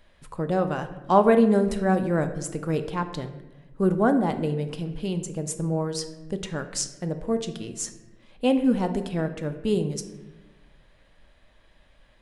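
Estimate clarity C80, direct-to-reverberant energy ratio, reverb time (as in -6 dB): 13.0 dB, 7.5 dB, 1.1 s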